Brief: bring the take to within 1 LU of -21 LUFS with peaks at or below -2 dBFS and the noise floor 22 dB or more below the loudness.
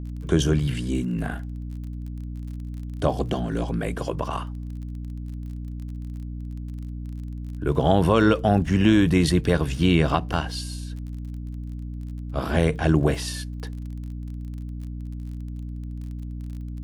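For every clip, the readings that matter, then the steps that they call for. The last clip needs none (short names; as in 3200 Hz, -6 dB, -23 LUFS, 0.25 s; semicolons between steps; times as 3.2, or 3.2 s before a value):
ticks 29/s; hum 60 Hz; harmonics up to 300 Hz; hum level -30 dBFS; loudness -26.0 LUFS; peak -5.0 dBFS; loudness target -21.0 LUFS
-> de-click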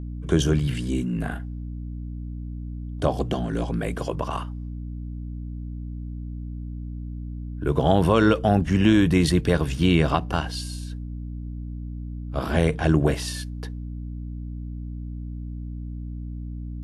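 ticks 0.12/s; hum 60 Hz; harmonics up to 300 Hz; hum level -30 dBFS
-> notches 60/120/180/240/300 Hz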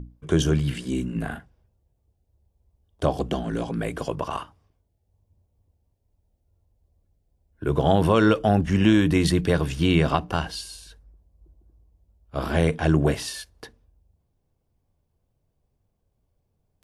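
hum none; loudness -23.5 LUFS; peak -5.5 dBFS; loudness target -21.0 LUFS
-> gain +2.5 dB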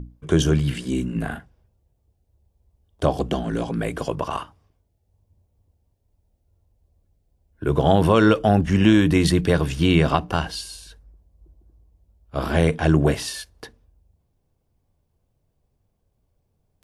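loudness -21.0 LUFS; peak -3.0 dBFS; noise floor -71 dBFS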